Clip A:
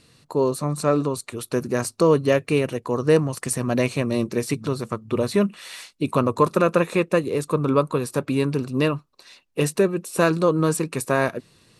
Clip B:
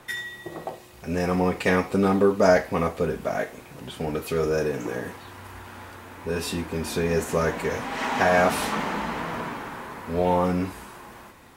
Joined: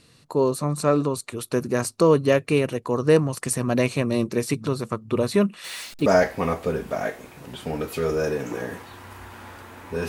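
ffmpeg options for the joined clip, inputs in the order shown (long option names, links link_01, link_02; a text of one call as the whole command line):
ffmpeg -i cue0.wav -i cue1.wav -filter_complex "[0:a]asettb=1/sr,asplit=3[link_01][link_02][link_03];[link_01]atrim=end=5.644[link_04];[link_02]atrim=start=5.64:end=6.06,asetpts=PTS-STARTPTS,afade=type=in:duration=0.004:curve=qsin,afade=type=out:start_time=0.416:duration=0.004:curve=qsin,aeval=exprs='val(0)+0.5*0.0141*sgn(val(0))':channel_layout=same[link_05];[link_03]atrim=start=6.056[link_06];[link_04][link_05]acrossfade=duration=0.004:curve1=hsin:curve2=qsin[link_07];[link_07][link_06]acrossfade=duration=0.004:curve1=qsin:curve2=hsin,apad=whole_dur=10.08,atrim=end=10.08,atrim=end=6.062[link_08];[1:a]atrim=start=2.398:end=6.42[link_09];[link_08][link_09]acrossfade=duration=0.004:curve1=hsin:curve2=hsin" out.wav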